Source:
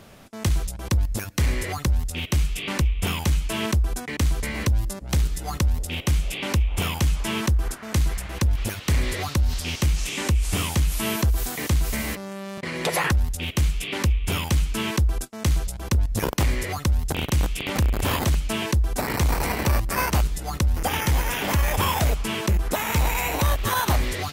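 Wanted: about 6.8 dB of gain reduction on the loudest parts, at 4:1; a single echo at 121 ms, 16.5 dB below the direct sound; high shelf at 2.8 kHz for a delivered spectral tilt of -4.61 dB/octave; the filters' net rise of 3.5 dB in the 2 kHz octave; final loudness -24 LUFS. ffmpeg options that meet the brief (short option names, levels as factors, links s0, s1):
-af "equalizer=f=2000:t=o:g=6.5,highshelf=f=2800:g=-5.5,acompressor=threshold=0.0562:ratio=4,aecho=1:1:121:0.15,volume=1.78"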